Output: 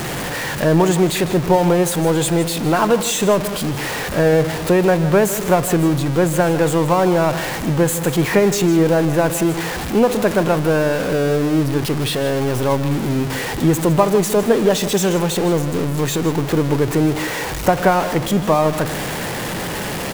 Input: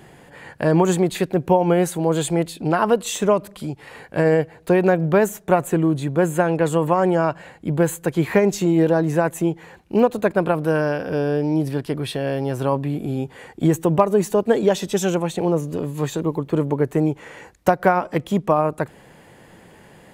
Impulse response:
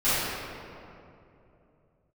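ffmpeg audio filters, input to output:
-filter_complex "[0:a]aeval=exprs='val(0)+0.5*0.106*sgn(val(0))':c=same,aecho=1:1:157:0.2,asplit=2[a][b];[1:a]atrim=start_sample=2205[c];[b][c]afir=irnorm=-1:irlink=0,volume=-32.5dB[d];[a][d]amix=inputs=2:normalize=0"

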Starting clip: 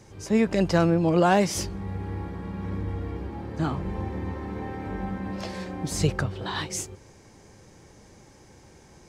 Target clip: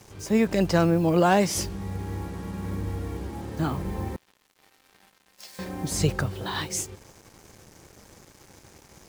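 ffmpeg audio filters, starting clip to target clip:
-filter_complex "[0:a]asettb=1/sr,asplit=3[a][b][c];[a]atrim=end=4.164[d];[b]atrim=start=4.16:end=5.59,asetpts=PTS-STARTPTS,afade=t=in:d=0.004:c=qsin,afade=t=out:st=1.426:d=0.004:c=qsin,aderivative[e];[c]atrim=start=5.586[f];[d][e]acrossfade=d=0.004:c1=hsin:c2=qsin[g];[g][f]acrossfade=d=0.004:c1=qsin:c2=hsin,acrusher=bits=7:mix=0:aa=0.5,highshelf=f=10k:g=7.5"

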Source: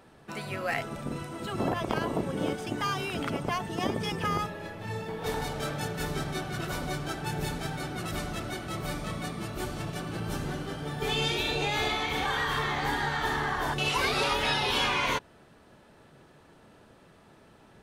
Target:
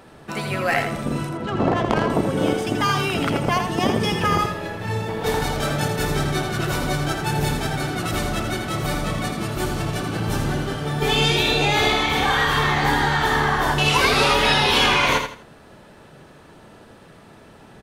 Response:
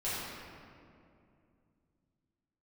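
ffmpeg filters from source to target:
-filter_complex "[0:a]asettb=1/sr,asplit=3[a][b][c];[a]atrim=end=1.294[d];[b]atrim=start=1.29:end=2.1,asetpts=PTS-STARTPTS,afade=t=in:d=0.004:c=qsin,afade=t=out:st=0.806:d=0.004:c=qsin,adynamicsmooth=sensitivity=4.5:basefreq=1.6k[e];[c]atrim=start=2.096[f];[d][e]acrossfade=d=0.004:c1=hsin:c2=qsin[g];[g][f]acrossfade=d=0.004:c1=qsin:c2=hsin,asplit=2[h][i];[i]aecho=0:1:82|164|246:0.447|0.125|0.035[j];[h][j]amix=inputs=2:normalize=0,volume=9dB"

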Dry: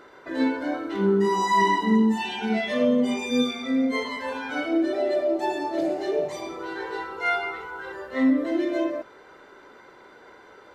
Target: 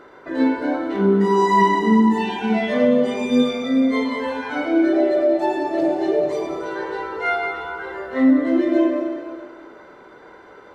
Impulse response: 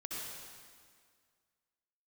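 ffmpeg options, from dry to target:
-filter_complex "[0:a]highshelf=f=2.4k:g=-8.5,asplit=2[a][b];[1:a]atrim=start_sample=2205,adelay=103[c];[b][c]afir=irnorm=-1:irlink=0,volume=-6.5dB[d];[a][d]amix=inputs=2:normalize=0,volume=5dB"

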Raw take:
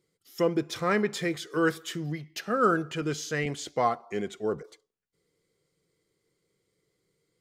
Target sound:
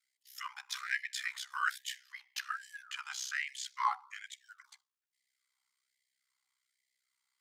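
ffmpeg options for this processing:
-af "aeval=exprs='val(0)*sin(2*PI*32*n/s)':c=same,highpass=f=430:t=q:w=4.9,afftfilt=real='re*gte(b*sr/1024,760*pow(1700/760,0.5+0.5*sin(2*PI*1.2*pts/sr)))':imag='im*gte(b*sr/1024,760*pow(1700/760,0.5+0.5*sin(2*PI*1.2*pts/sr)))':win_size=1024:overlap=0.75"

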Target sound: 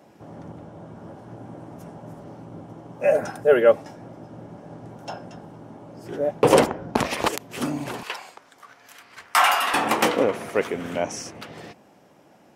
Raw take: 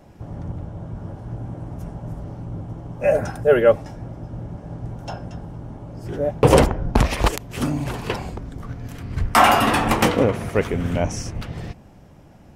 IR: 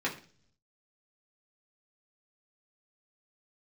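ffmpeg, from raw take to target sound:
-af "asetnsamples=n=441:p=0,asendcmd='8.03 highpass f 1000;9.74 highpass f 300',highpass=230,volume=-1dB"

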